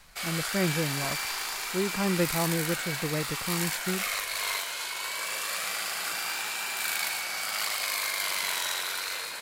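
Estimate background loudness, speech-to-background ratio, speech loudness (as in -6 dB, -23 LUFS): -30.0 LUFS, -2.0 dB, -32.0 LUFS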